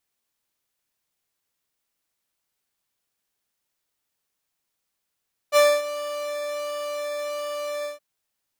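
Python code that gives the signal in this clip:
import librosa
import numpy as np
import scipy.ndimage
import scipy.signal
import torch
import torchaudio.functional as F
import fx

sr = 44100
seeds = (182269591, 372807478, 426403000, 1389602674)

y = fx.sub_patch_pwm(sr, seeds[0], note=74, wave2='saw', interval_st=19, detune_cents=16, level2_db=-15, sub_db=-20.0, noise_db=-21, kind='highpass', cutoff_hz=360.0, q=1.3, env_oct=1.0, env_decay_s=0.27, env_sustain_pct=40, attack_ms=46.0, decay_s=0.25, sustain_db=-16.5, release_s=0.14, note_s=2.33, lfo_hz=1.4, width_pct=35, width_swing_pct=5)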